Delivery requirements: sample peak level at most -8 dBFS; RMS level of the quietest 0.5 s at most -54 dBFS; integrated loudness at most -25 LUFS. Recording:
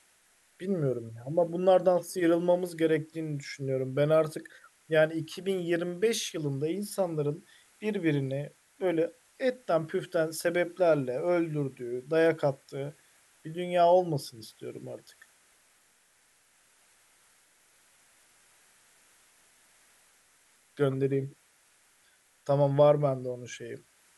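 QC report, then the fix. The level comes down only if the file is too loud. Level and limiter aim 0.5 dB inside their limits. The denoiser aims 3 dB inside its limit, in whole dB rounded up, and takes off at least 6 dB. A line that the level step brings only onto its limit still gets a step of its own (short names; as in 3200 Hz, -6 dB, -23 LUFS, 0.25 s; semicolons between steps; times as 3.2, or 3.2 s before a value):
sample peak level -12.0 dBFS: OK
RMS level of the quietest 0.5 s -66 dBFS: OK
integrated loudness -29.0 LUFS: OK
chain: none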